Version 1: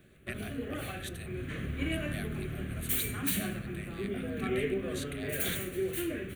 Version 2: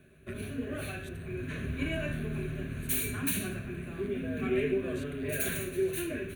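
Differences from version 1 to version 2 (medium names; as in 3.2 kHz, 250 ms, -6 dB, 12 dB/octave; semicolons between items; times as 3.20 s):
speech -11.0 dB; background: add rippled EQ curve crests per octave 1.5, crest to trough 8 dB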